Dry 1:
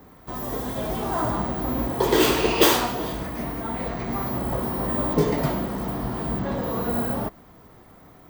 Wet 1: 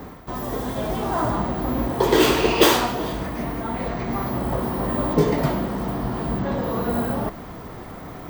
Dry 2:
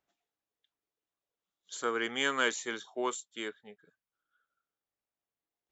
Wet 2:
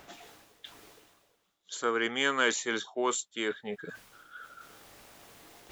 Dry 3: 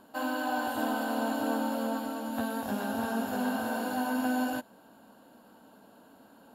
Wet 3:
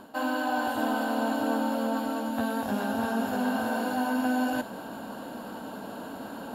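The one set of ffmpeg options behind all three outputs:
ffmpeg -i in.wav -af "highshelf=frequency=7500:gain=-5.5,areverse,acompressor=mode=upward:threshold=-27dB:ratio=2.5,areverse,volume=2.5dB" out.wav

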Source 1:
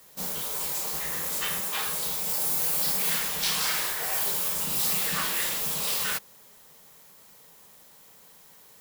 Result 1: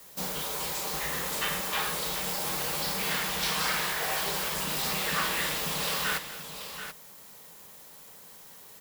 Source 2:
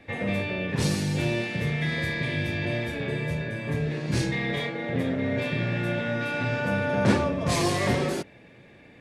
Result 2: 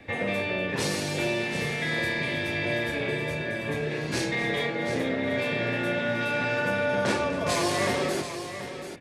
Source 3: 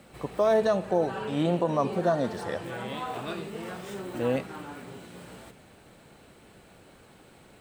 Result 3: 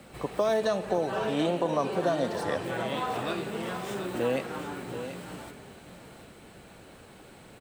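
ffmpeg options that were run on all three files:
ffmpeg -i in.wav -filter_complex "[0:a]acrossover=split=290|2100|5300[link_01][link_02][link_03][link_04];[link_01]acompressor=threshold=-41dB:ratio=4[link_05];[link_02]acompressor=threshold=-28dB:ratio=4[link_06];[link_03]acompressor=threshold=-37dB:ratio=4[link_07];[link_04]acompressor=threshold=-38dB:ratio=4[link_08];[link_05][link_06][link_07][link_08]amix=inputs=4:normalize=0,asplit=2[link_09][link_10];[link_10]aecho=0:1:244|733:0.158|0.316[link_11];[link_09][link_11]amix=inputs=2:normalize=0,volume=3dB" out.wav

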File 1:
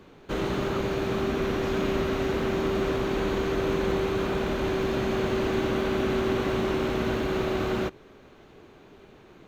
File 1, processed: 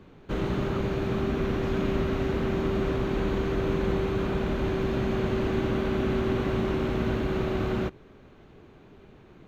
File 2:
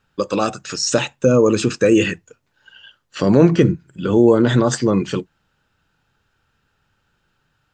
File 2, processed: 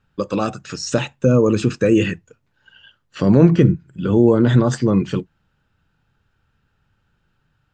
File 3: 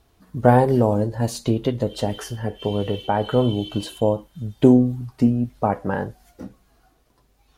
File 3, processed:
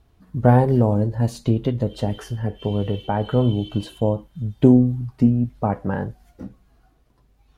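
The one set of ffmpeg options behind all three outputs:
ffmpeg -i in.wav -af "bass=frequency=250:gain=7,treble=frequency=4000:gain=-5,volume=-3dB" out.wav

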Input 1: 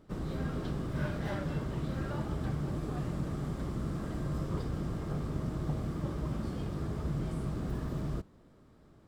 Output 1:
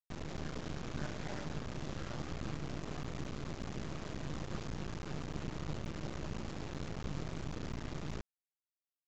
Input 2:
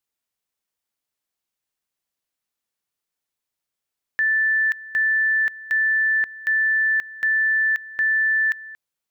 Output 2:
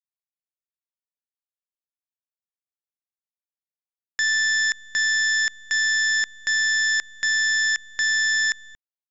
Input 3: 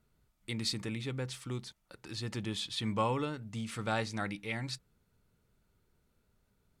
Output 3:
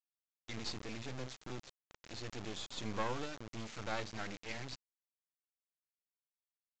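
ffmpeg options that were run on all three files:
ffmpeg -i in.wav -af "acrusher=bits=4:dc=4:mix=0:aa=0.000001,aresample=16000,aresample=44100,volume=-3dB" out.wav

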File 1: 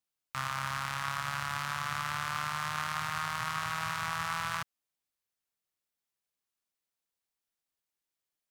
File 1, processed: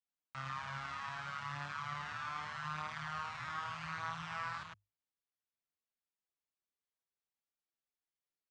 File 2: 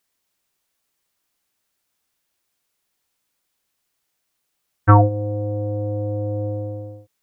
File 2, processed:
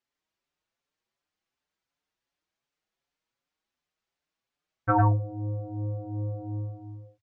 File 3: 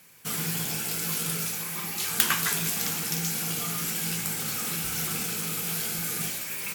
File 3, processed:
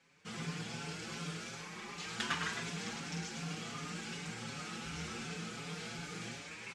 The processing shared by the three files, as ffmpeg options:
ffmpeg -i in.wav -filter_complex "[0:a]lowpass=frequency=7700:width=0.5412,lowpass=frequency=7700:width=1.3066,aemphasis=mode=reproduction:type=50fm,bandreject=frequency=50:width_type=h:width=6,bandreject=frequency=100:width_type=h:width=6,asplit=2[link_01][link_02];[link_02]aecho=0:1:105:0.596[link_03];[link_01][link_03]amix=inputs=2:normalize=0,asplit=2[link_04][link_05];[link_05]adelay=5.6,afreqshift=2.7[link_06];[link_04][link_06]amix=inputs=2:normalize=1,volume=-5.5dB" out.wav

